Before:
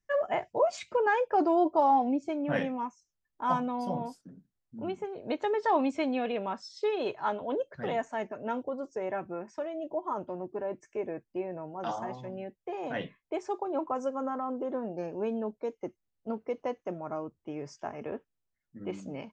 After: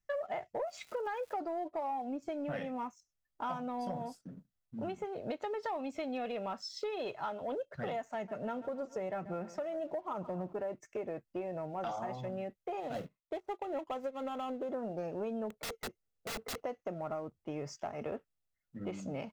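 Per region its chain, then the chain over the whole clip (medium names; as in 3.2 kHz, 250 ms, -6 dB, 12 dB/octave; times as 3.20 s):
0.66–1.39 s: high-pass 220 Hz + crackle 320 per s -44 dBFS
8.14–10.53 s: peaking EQ 180 Hz +7 dB 0.44 oct + feedback delay 137 ms, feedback 47%, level -19 dB
12.80–14.69 s: median filter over 25 samples + upward expansion, over -53 dBFS
15.50–16.61 s: integer overflow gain 37 dB + peaking EQ 450 Hz +9.5 dB 0.39 oct
whole clip: comb 1.5 ms, depth 32%; compression 10:1, threshold -36 dBFS; waveshaping leveller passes 1; trim -1.5 dB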